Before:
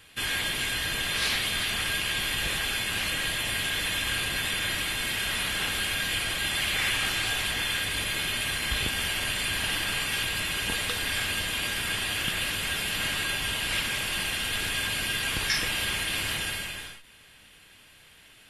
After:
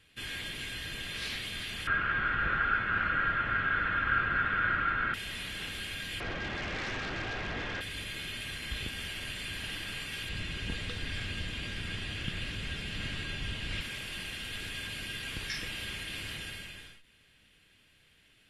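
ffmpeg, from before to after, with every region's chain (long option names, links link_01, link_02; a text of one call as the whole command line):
ffmpeg -i in.wav -filter_complex "[0:a]asettb=1/sr,asplit=3[link_01][link_02][link_03];[link_01]atrim=end=1.874[link_04];[link_02]atrim=start=1.87:end=5.14,asetpts=PTS-STARTPTS,afade=type=in:duration=0.004:curve=qsin,afade=type=out:start_time=3.266:duration=0.004:curve=qsin,acontrast=33,lowpass=frequency=1400:width_type=q:width=16[link_05];[link_03]atrim=start=5.136[link_06];[link_04][link_05]acrossfade=duration=0.004:curve1=hsin:curve2=qsin[link_07];[link_07][link_06]acrossfade=duration=0.004:curve1=qsin:curve2=hsin,asettb=1/sr,asplit=3[link_08][link_09][link_10];[link_08]atrim=end=6.204[link_11];[link_09]atrim=start=6.2:end=7.81,asetpts=PTS-STARTPTS,afade=type=in:duration=0.004:curve=qsin,afade=type=out:start_time=1.606:duration=0.004:curve=qsin,lowpass=1000,lowshelf=frequency=330:gain=-10.5,aeval=exprs='0.075*sin(PI/2*5.01*val(0)/0.075)':channel_layout=same[link_12];[link_10]atrim=start=7.806[link_13];[link_11][link_12]acrossfade=duration=0.004:curve1=hsin:curve2=qsin[link_14];[link_14][link_13]acrossfade=duration=0.004:curve1=qsin:curve2=hsin,asettb=1/sr,asplit=3[link_15][link_16][link_17];[link_15]atrim=end=10.294[link_18];[link_16]atrim=start=10.29:end=13.81,asetpts=PTS-STARTPTS,afade=type=in:duration=0.004:curve=qsin,afade=type=out:start_time=3.516:duration=0.004:curve=qsin,lowpass=7400,lowshelf=frequency=260:gain=8.5[link_19];[link_17]atrim=start=13.806[link_20];[link_18][link_19]acrossfade=duration=0.004:curve1=hsin:curve2=qsin[link_21];[link_21][link_20]acrossfade=duration=0.004:curve1=qsin:curve2=hsin,lowpass=frequency=3300:poles=1,equalizer=frequency=900:width=0.92:gain=-8.5,volume=-6dB" out.wav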